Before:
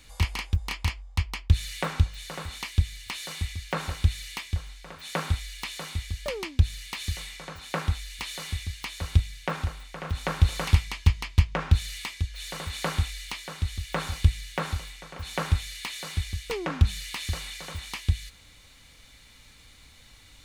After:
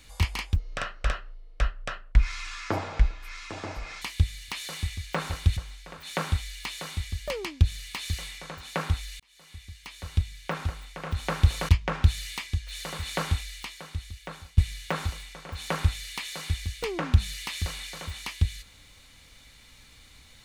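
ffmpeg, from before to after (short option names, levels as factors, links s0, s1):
-filter_complex "[0:a]asplit=7[s0][s1][s2][s3][s4][s5][s6];[s0]atrim=end=0.564[s7];[s1]atrim=start=0.56:end=2.6,asetpts=PTS-STARTPTS,asetrate=26019,aresample=44100,atrim=end_sample=152481,asetpts=PTS-STARTPTS[s8];[s2]atrim=start=2.596:end=4.152[s9];[s3]atrim=start=4.548:end=8.18,asetpts=PTS-STARTPTS,afade=t=out:st=3.628:d=0.004:c=hsin[s10];[s4]atrim=start=8.18:end=10.672,asetpts=PTS-STARTPTS,afade=t=in:d=1.63[s11];[s5]atrim=start=11.358:end=14.25,asetpts=PTS-STARTPTS,afade=t=out:st=1.522:d=1.37:silence=0.125893[s12];[s6]atrim=start=14.25,asetpts=PTS-STARTPTS,afade=t=in:d=0.004:c=hsin:silence=0.125893[s13];[s7][s8]acrossfade=d=0.004:c1=hsin:c2=hsin[s14];[s14][s9]acrossfade=d=0.004:c1=hsin:c2=hsin[s15];[s10][s11]concat=n=2:v=0:a=1[s16];[s15][s16]acrossfade=d=0.004:c1=hsin:c2=hsin[s17];[s12][s13]concat=n=2:v=0:a=1[s18];[s17][s18]acrossfade=d=0.004:c1=hsin:c2=hsin"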